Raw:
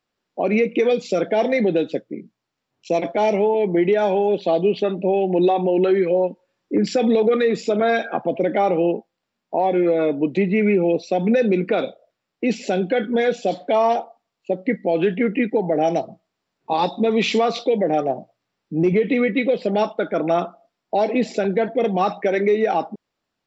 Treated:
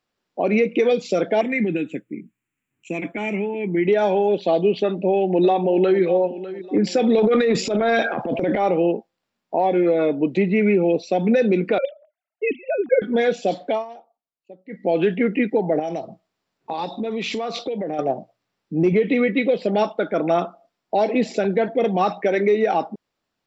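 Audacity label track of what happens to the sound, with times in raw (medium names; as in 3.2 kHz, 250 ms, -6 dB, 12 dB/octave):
1.410000	3.870000	FFT filter 310 Hz 0 dB, 570 Hz -15 dB, 890 Hz -11 dB, 2.5 kHz +5 dB, 4.9 kHz -26 dB, 7.4 kHz +5 dB
4.830000	6.010000	echo throw 600 ms, feedback 35%, level -14.5 dB
7.180000	8.670000	transient shaper attack -9 dB, sustain +9 dB
11.780000	13.020000	formants replaced by sine waves
13.670000	14.870000	dip -20 dB, fades 0.18 s
15.790000	17.990000	compression 5:1, threshold -23 dBFS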